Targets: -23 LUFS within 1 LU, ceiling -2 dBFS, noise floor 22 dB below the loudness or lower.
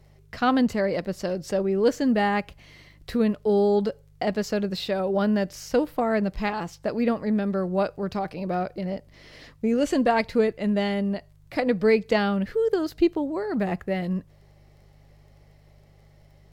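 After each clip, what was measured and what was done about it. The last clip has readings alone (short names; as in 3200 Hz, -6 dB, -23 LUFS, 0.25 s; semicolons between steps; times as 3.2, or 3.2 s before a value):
ticks 17/s; hum 50 Hz; harmonics up to 150 Hz; hum level -53 dBFS; loudness -25.0 LUFS; peak -9.0 dBFS; loudness target -23.0 LUFS
-> de-click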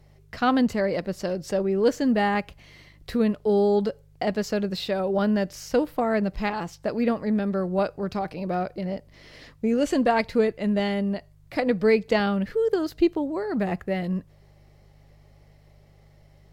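ticks 0.18/s; hum 50 Hz; harmonics up to 150 Hz; hum level -53 dBFS
-> de-hum 50 Hz, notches 3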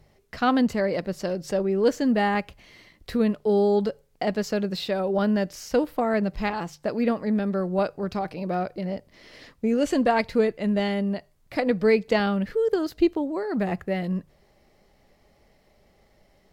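hum none; loudness -25.0 LUFS; peak -9.0 dBFS; loudness target -23.0 LUFS
-> gain +2 dB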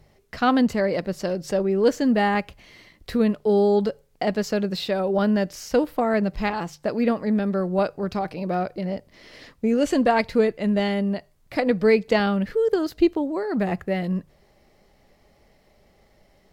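loudness -23.0 LUFS; peak -7.0 dBFS; noise floor -60 dBFS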